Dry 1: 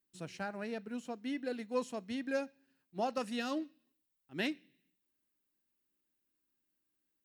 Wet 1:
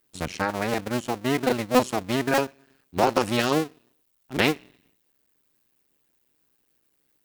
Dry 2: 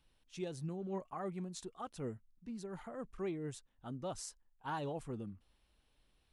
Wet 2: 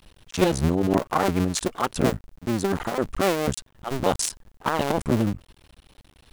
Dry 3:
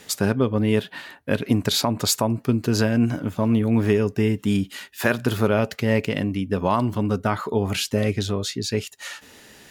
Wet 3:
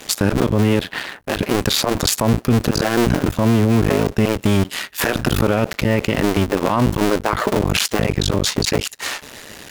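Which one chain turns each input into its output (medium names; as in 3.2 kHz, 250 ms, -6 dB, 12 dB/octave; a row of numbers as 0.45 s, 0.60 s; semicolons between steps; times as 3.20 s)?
cycle switcher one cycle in 2, muted; peak limiter -19 dBFS; peak normalisation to -6 dBFS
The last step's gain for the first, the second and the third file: +16.5 dB, +22.5 dB, +13.0 dB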